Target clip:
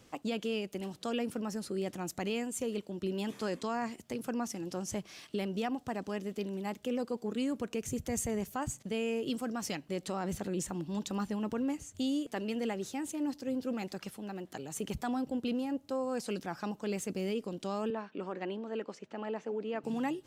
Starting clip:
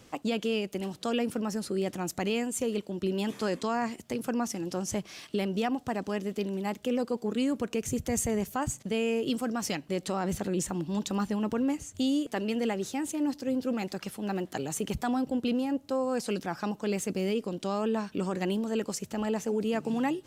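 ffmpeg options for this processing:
-filter_complex "[0:a]asplit=3[a][b][c];[a]afade=t=out:st=14.09:d=0.02[d];[b]acompressor=threshold=-36dB:ratio=2,afade=t=in:st=14.09:d=0.02,afade=t=out:st=14.74:d=0.02[e];[c]afade=t=in:st=14.74:d=0.02[f];[d][e][f]amix=inputs=3:normalize=0,asettb=1/sr,asplit=3[g][h][i];[g]atrim=end=17.904[j];[h]atrim=start=17.9:end=19.84,asetpts=PTS-STARTPTS,afade=t=in:d=0.004:c=qsin,afade=t=out:st=1.936:d=0.004:c=qsin,highpass=290,lowpass=2.7k[k];[i]atrim=start=19.836[l];[j][k]acrossfade=d=0.004:c1=hsin:c2=qsin[m];[m][l]acrossfade=d=0.004:c1=qsin:c2=hsin,volume=-5dB"

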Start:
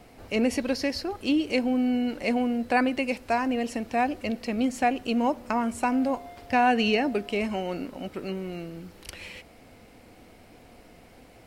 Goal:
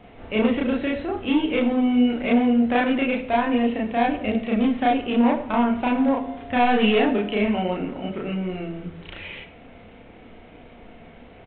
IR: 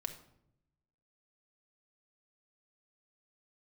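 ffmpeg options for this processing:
-filter_complex "[0:a]asoftclip=type=hard:threshold=-21.5dB,aresample=8000,aresample=44100,asplit=2[a][b];[1:a]atrim=start_sample=2205,adelay=33[c];[b][c]afir=irnorm=-1:irlink=0,volume=3dB[d];[a][d]amix=inputs=2:normalize=0,volume=1.5dB"

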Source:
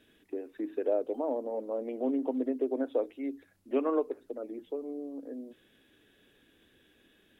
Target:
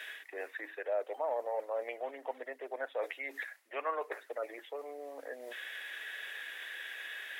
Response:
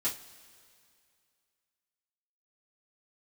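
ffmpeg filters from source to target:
-af "equalizer=f=1.9k:w=2.3:g=13.5,areverse,acompressor=threshold=-45dB:ratio=5,areverse,highpass=f=640:w=0.5412,highpass=f=640:w=1.3066,volume=17.5dB"

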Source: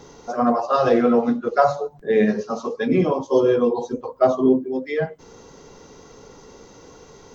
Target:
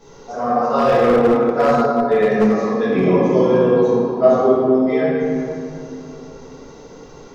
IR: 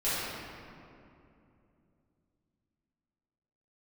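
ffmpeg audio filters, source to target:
-filter_complex "[1:a]atrim=start_sample=2205[a];[0:a][a]afir=irnorm=-1:irlink=0,asettb=1/sr,asplit=3[b][c][d];[b]atrim=end=0.784[e];[c]atrim=start=0.78:end=3.04,asetpts=PTS-STARTPTS,afade=t=in:d=0.004:c=qsin,afade=t=out:st=2.256:d=0.004:c=qsin,volume=3dB,asoftclip=hard,volume=-3dB[f];[d]atrim=start=3.036[g];[e][f]acrossfade=d=0.004:c1=hsin:c2=qsin[h];[h][g]acrossfade=d=0.004:c1=qsin:c2=hsin,volume=-6dB"

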